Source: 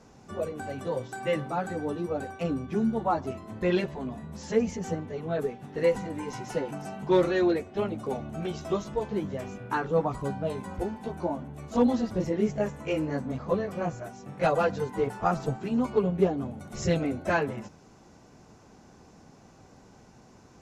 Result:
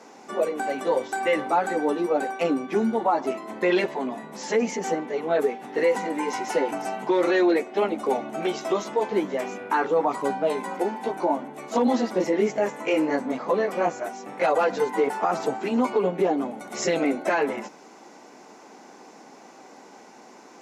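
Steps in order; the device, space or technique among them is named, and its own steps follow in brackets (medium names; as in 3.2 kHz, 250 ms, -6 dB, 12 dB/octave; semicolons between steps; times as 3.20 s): laptop speaker (high-pass 260 Hz 24 dB/octave; peaking EQ 860 Hz +4.5 dB 0.43 oct; peaking EQ 2.1 kHz +5.5 dB 0.34 oct; peak limiter -21 dBFS, peak gain reduction 11 dB); trim +8 dB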